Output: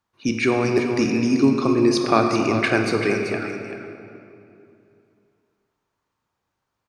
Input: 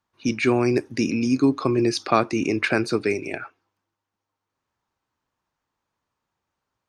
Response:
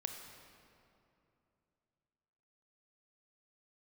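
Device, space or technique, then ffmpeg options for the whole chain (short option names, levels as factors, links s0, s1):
cave: -filter_complex "[0:a]aecho=1:1:386:0.335[s0];[1:a]atrim=start_sample=2205[s1];[s0][s1]afir=irnorm=-1:irlink=0,volume=1.41"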